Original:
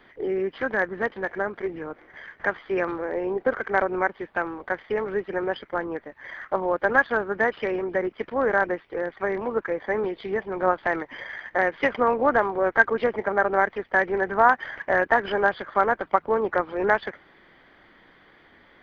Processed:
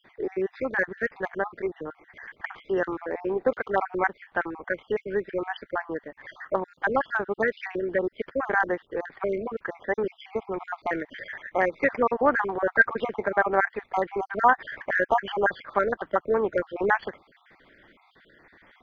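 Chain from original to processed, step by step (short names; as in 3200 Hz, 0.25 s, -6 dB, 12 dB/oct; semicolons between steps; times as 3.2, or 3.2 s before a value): random spectral dropouts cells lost 44%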